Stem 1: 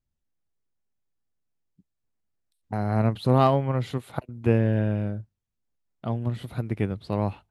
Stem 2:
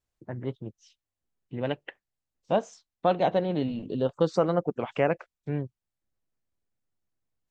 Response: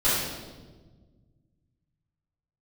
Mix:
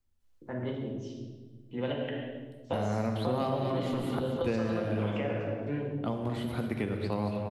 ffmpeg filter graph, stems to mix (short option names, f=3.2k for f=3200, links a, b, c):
-filter_complex "[0:a]volume=1.5dB,asplit=3[a][b][c];[b]volume=-18.5dB[d];[c]volume=-10dB[e];[1:a]equalizer=f=3.1k:t=o:w=0.77:g=4,acompressor=threshold=-24dB:ratio=6,adelay=200,volume=-3dB,asplit=2[f][g];[g]volume=-11.5dB[h];[2:a]atrim=start_sample=2205[i];[d][h]amix=inputs=2:normalize=0[j];[j][i]afir=irnorm=-1:irlink=0[k];[e]aecho=0:1:228|456|684|912|1140|1368:1|0.41|0.168|0.0689|0.0283|0.0116[l];[a][f][k][l]amix=inputs=4:normalize=0,equalizer=f=150:w=3.7:g=-8.5,acrossover=split=160|750|3200[m][n][o][p];[m]acompressor=threshold=-39dB:ratio=4[q];[n]acompressor=threshold=-32dB:ratio=4[r];[o]acompressor=threshold=-41dB:ratio=4[s];[p]acompressor=threshold=-51dB:ratio=4[t];[q][r][s][t]amix=inputs=4:normalize=0"